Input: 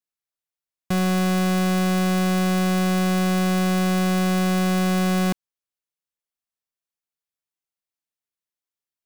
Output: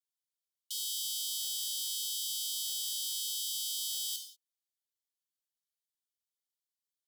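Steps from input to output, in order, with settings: non-linear reverb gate 0.27 s falling, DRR 1.5 dB; varispeed +28%; brick-wall FIR high-pass 2900 Hz; gain -2.5 dB

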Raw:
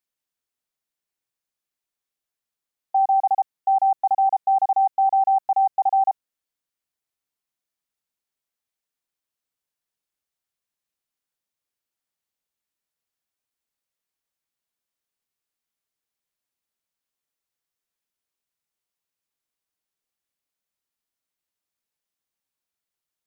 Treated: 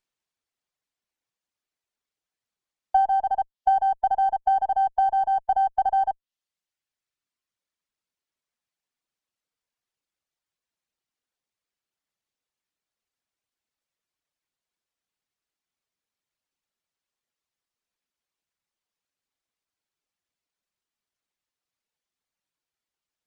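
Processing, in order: treble ducked by the level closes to 780 Hz, closed at -17.5 dBFS; reverb removal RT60 1.6 s; running maximum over 3 samples; gain +2.5 dB

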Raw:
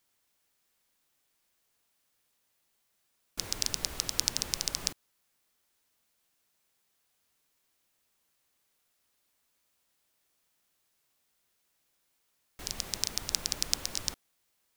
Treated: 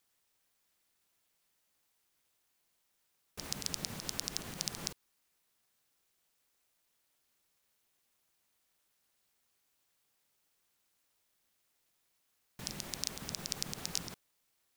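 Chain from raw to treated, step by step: limiter -12 dBFS, peak gain reduction 10 dB; ring modulator 170 Hz; gain +1 dB

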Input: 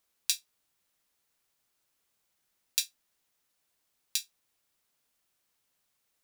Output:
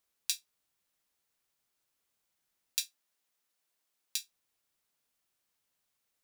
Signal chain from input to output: 2.85–4.16 HPF 250 Hz 6 dB/oct; gain -4 dB

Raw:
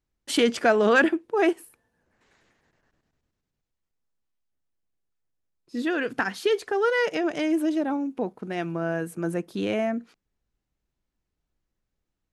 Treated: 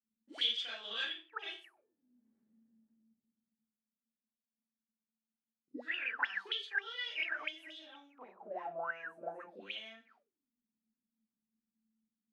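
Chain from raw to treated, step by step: Schroeder reverb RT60 0.31 s, combs from 28 ms, DRR -9 dB; auto-wah 220–3400 Hz, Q 20, up, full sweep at -12.5 dBFS

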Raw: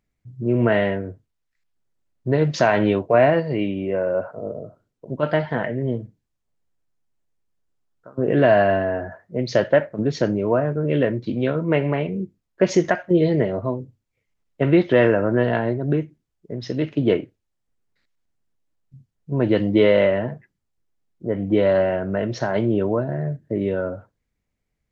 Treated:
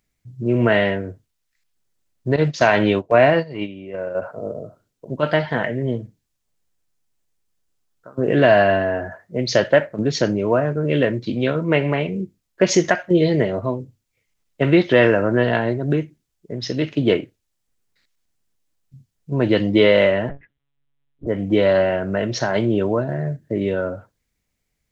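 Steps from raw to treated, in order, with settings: 2.36–4.22 gate -20 dBFS, range -11 dB; high shelf 2400 Hz +10 dB; 20.29–21.27 monotone LPC vocoder at 8 kHz 140 Hz; gain +1 dB

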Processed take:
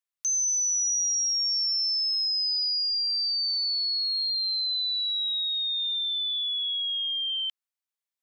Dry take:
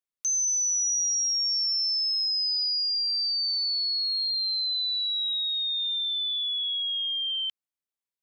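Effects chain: HPF 830 Hz

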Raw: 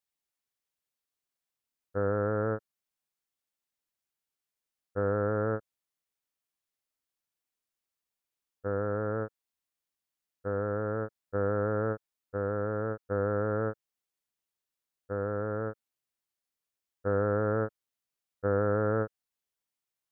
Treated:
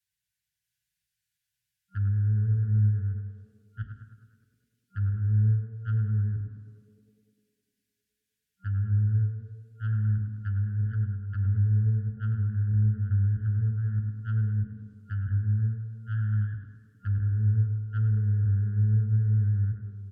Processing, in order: reverse delay 0.636 s, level -2 dB; FFT band-reject 190–1400 Hz; treble ducked by the level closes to 500 Hz, closed at -36 dBFS; comb 6.6 ms, depth 55%; in parallel at -3 dB: compressor, threshold -47 dBFS, peak gain reduction 14.5 dB; on the sum: limiter -32.5 dBFS, peak gain reduction 6 dB; small resonant body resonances 300/560/900/1300 Hz, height 9 dB, ringing for 40 ms; added harmonics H 3 -23 dB, 4 -17 dB, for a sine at -29 dBFS; tape echo 0.102 s, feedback 87%, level -5 dB, low-pass 1500 Hz; on a send at -5 dB: reverb RT60 1.0 s, pre-delay 3 ms

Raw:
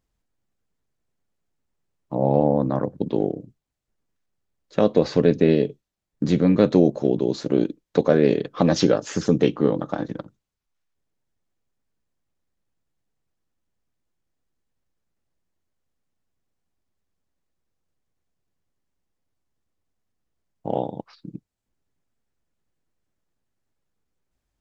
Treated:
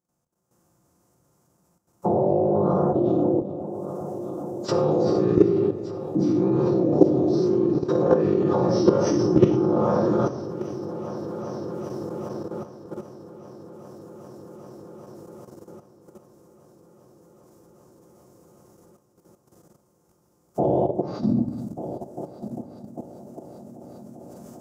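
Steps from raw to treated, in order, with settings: spectral dilation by 0.12 s; recorder AGC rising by 51 dB/s; random-step tremolo 3.5 Hz, depth 55%; formant-preserving pitch shift -6 st; HPF 160 Hz 12 dB/oct; multi-head echo 0.396 s, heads first and third, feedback 71%, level -15.5 dB; on a send at -2 dB: reverb RT60 0.90 s, pre-delay 6 ms; on the sum: level quantiser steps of 11 dB; band shelf 2700 Hz -14 dB; gain +1.5 dB

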